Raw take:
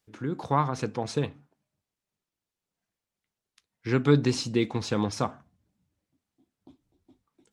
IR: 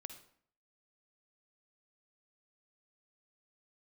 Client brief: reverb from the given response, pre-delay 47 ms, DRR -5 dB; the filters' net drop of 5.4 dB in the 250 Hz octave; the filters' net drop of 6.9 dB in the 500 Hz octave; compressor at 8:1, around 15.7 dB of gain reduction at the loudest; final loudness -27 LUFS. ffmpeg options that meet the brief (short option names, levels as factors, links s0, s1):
-filter_complex "[0:a]equalizer=f=250:t=o:g=-5,equalizer=f=500:t=o:g=-7,acompressor=threshold=0.0158:ratio=8,asplit=2[s0][s1];[1:a]atrim=start_sample=2205,adelay=47[s2];[s1][s2]afir=irnorm=-1:irlink=0,volume=2.99[s3];[s0][s3]amix=inputs=2:normalize=0,volume=2.66"